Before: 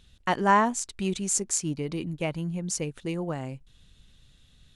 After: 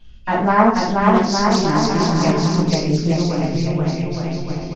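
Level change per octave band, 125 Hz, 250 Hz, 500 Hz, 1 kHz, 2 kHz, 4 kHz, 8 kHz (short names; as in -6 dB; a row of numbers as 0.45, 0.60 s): +15.0, +14.0, +12.5, +9.5, +8.0, +14.0, -1.0 dB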